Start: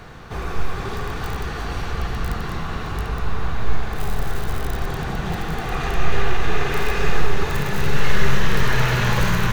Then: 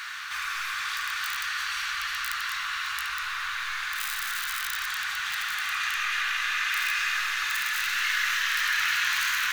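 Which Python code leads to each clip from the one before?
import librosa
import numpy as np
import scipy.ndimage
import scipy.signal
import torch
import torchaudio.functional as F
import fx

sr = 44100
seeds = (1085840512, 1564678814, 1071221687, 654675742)

y = scipy.signal.sosfilt(scipy.signal.cheby2(4, 40, 690.0, 'highpass', fs=sr, output='sos'), x)
y = fx.env_flatten(y, sr, amount_pct=50)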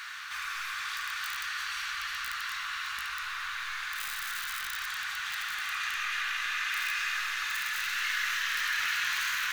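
y = np.clip(x, -10.0 ** (-18.0 / 20.0), 10.0 ** (-18.0 / 20.0))
y = F.gain(torch.from_numpy(y), -4.5).numpy()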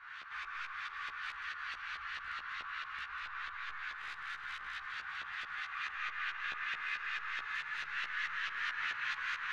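y = fx.filter_lfo_lowpass(x, sr, shape='saw_up', hz=4.6, low_hz=960.0, high_hz=3700.0, q=0.82)
y = fx.doubler(y, sr, ms=14.0, db=-4)
y = F.gain(torch.from_numpy(y), -6.5).numpy()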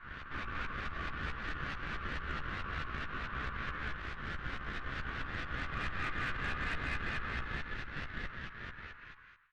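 y = fx.fade_out_tail(x, sr, length_s=2.72)
y = fx.cheby_harmonics(y, sr, harmonics=(6,), levels_db=(-17,), full_scale_db=-26.5)
y = fx.riaa(y, sr, side='playback')
y = F.gain(torch.from_numpy(y), 2.0).numpy()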